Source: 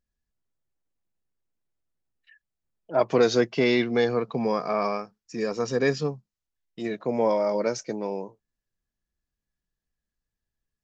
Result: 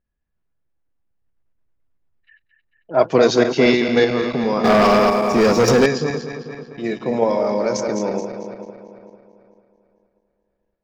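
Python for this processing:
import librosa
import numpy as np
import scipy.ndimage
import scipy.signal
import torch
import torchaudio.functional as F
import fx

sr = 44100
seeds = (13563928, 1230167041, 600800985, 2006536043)

p1 = fx.reverse_delay_fb(x, sr, ms=111, feedback_pct=77, wet_db=-7.0)
p2 = fx.level_steps(p1, sr, step_db=10)
p3 = p1 + F.gain(torch.from_numpy(p2), 2.5).numpy()
p4 = fx.env_lowpass(p3, sr, base_hz=2200.0, full_db=-16.5)
y = fx.leveller(p4, sr, passes=3, at=(4.64, 5.86))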